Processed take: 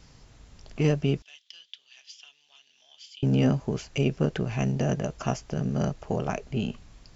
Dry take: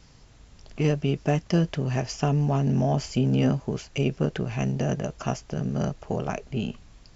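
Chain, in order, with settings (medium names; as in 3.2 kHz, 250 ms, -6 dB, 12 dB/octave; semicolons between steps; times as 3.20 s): 1.22–3.23 s: ladder band-pass 3.6 kHz, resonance 75%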